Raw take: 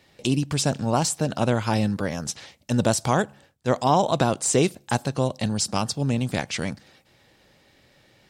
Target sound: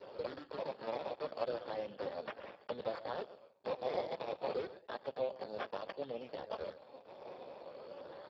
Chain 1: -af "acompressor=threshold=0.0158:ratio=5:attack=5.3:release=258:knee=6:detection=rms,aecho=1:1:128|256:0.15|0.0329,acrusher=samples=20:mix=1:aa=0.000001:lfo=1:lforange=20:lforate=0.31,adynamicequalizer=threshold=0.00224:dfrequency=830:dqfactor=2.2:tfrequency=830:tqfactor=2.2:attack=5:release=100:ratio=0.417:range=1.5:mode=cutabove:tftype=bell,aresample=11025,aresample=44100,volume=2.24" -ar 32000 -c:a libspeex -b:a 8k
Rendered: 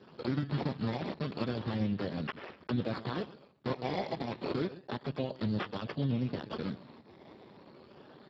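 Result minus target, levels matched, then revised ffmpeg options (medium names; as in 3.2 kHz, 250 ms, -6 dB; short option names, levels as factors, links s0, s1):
compression: peak gain reduction -7.5 dB; 500 Hz band -6.5 dB
-af "acompressor=threshold=0.00531:ratio=5:attack=5.3:release=258:knee=6:detection=rms,aecho=1:1:128|256:0.15|0.0329,acrusher=samples=20:mix=1:aa=0.000001:lfo=1:lforange=20:lforate=0.31,adynamicequalizer=threshold=0.00224:dfrequency=830:dqfactor=2.2:tfrequency=830:tqfactor=2.2:attack=5:release=100:ratio=0.417:range=1.5:mode=cutabove:tftype=bell,highpass=f=530:t=q:w=3.4,aresample=11025,aresample=44100,volume=2.24" -ar 32000 -c:a libspeex -b:a 8k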